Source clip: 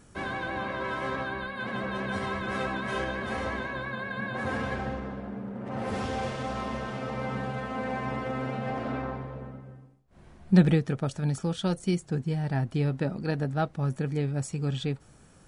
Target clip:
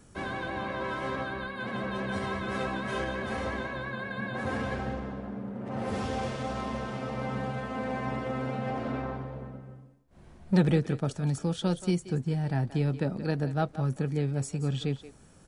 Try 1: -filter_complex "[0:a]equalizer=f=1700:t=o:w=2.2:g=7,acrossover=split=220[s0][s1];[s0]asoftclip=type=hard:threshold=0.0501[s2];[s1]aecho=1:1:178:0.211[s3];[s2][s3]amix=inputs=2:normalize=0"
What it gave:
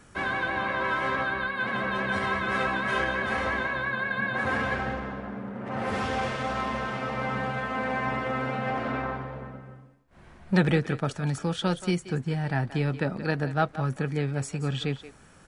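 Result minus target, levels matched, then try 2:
2 kHz band +6.0 dB
-filter_complex "[0:a]equalizer=f=1700:t=o:w=2.2:g=-2.5,acrossover=split=220[s0][s1];[s0]asoftclip=type=hard:threshold=0.0501[s2];[s1]aecho=1:1:178:0.211[s3];[s2][s3]amix=inputs=2:normalize=0"

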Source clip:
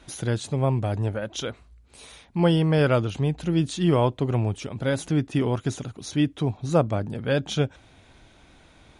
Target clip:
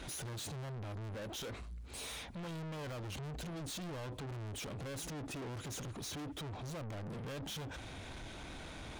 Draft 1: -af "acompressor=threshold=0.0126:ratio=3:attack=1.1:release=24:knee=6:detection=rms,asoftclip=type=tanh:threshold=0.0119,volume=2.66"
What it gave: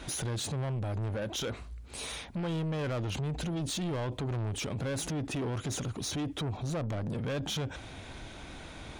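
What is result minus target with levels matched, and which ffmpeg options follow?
saturation: distortion -7 dB
-af "acompressor=threshold=0.0126:ratio=3:attack=1.1:release=24:knee=6:detection=rms,asoftclip=type=tanh:threshold=0.00299,volume=2.66"

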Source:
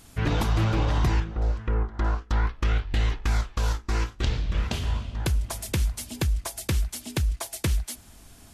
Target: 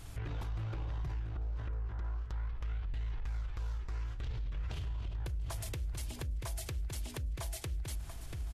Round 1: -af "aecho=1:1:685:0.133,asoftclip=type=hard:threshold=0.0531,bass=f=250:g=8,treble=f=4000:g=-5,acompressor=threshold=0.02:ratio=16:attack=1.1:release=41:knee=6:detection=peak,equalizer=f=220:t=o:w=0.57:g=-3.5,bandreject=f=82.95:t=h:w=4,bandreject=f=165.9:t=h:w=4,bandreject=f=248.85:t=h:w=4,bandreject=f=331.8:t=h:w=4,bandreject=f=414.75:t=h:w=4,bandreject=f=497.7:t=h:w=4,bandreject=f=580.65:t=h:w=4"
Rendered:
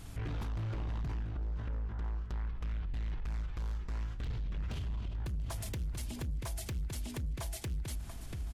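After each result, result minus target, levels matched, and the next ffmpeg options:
hard clipper: distortion +15 dB; 250 Hz band +4.5 dB
-af "aecho=1:1:685:0.133,asoftclip=type=hard:threshold=0.133,bass=f=250:g=8,treble=f=4000:g=-5,acompressor=threshold=0.02:ratio=16:attack=1.1:release=41:knee=6:detection=peak,equalizer=f=220:t=o:w=0.57:g=-3.5,bandreject=f=82.95:t=h:w=4,bandreject=f=165.9:t=h:w=4,bandreject=f=248.85:t=h:w=4,bandreject=f=331.8:t=h:w=4,bandreject=f=414.75:t=h:w=4,bandreject=f=497.7:t=h:w=4,bandreject=f=580.65:t=h:w=4"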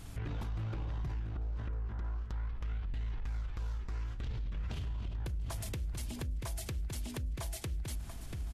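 250 Hz band +4.0 dB
-af "aecho=1:1:685:0.133,asoftclip=type=hard:threshold=0.133,bass=f=250:g=8,treble=f=4000:g=-5,acompressor=threshold=0.02:ratio=16:attack=1.1:release=41:knee=6:detection=peak,equalizer=f=220:t=o:w=0.57:g=-13,bandreject=f=82.95:t=h:w=4,bandreject=f=165.9:t=h:w=4,bandreject=f=248.85:t=h:w=4,bandreject=f=331.8:t=h:w=4,bandreject=f=414.75:t=h:w=4,bandreject=f=497.7:t=h:w=4,bandreject=f=580.65:t=h:w=4"

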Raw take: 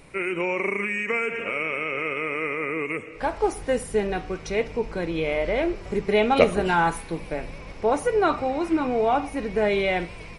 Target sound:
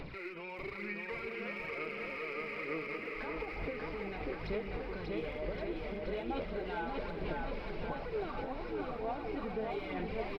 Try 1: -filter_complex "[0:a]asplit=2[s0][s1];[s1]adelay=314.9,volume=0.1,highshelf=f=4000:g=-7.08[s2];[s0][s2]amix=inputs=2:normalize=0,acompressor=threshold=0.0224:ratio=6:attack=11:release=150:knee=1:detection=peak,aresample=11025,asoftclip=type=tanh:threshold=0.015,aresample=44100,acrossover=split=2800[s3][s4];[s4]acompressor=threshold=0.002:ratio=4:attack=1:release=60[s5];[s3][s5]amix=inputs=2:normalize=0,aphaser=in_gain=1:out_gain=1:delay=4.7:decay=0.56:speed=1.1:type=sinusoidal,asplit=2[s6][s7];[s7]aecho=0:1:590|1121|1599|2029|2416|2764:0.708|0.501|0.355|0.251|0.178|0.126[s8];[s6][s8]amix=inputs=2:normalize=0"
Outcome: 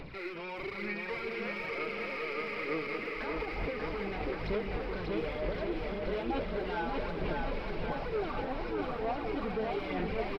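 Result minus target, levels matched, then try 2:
compression: peak gain reduction -7.5 dB
-filter_complex "[0:a]asplit=2[s0][s1];[s1]adelay=314.9,volume=0.1,highshelf=f=4000:g=-7.08[s2];[s0][s2]amix=inputs=2:normalize=0,acompressor=threshold=0.00794:ratio=6:attack=11:release=150:knee=1:detection=peak,aresample=11025,asoftclip=type=tanh:threshold=0.015,aresample=44100,acrossover=split=2800[s3][s4];[s4]acompressor=threshold=0.002:ratio=4:attack=1:release=60[s5];[s3][s5]amix=inputs=2:normalize=0,aphaser=in_gain=1:out_gain=1:delay=4.7:decay=0.56:speed=1.1:type=sinusoidal,asplit=2[s6][s7];[s7]aecho=0:1:590|1121|1599|2029|2416|2764:0.708|0.501|0.355|0.251|0.178|0.126[s8];[s6][s8]amix=inputs=2:normalize=0"

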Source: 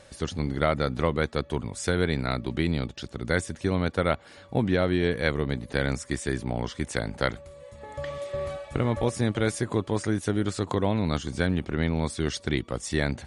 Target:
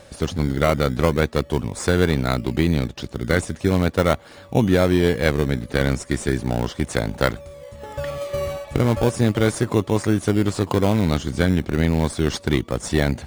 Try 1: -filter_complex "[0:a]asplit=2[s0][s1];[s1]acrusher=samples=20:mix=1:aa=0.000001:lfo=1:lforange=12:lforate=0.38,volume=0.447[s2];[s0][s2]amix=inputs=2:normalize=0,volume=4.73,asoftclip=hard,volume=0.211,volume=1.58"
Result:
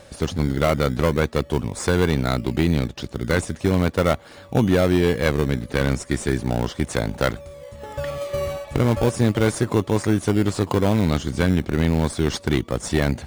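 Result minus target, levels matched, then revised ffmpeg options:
overload inside the chain: distortion +24 dB
-filter_complex "[0:a]asplit=2[s0][s1];[s1]acrusher=samples=20:mix=1:aa=0.000001:lfo=1:lforange=12:lforate=0.38,volume=0.447[s2];[s0][s2]amix=inputs=2:normalize=0,volume=2.24,asoftclip=hard,volume=0.447,volume=1.58"

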